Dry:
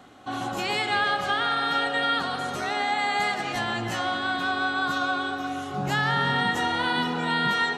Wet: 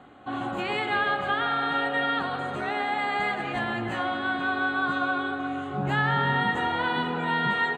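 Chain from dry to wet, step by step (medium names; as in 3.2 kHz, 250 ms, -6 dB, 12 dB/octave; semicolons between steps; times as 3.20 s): boxcar filter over 8 samples; doubling 14 ms -11 dB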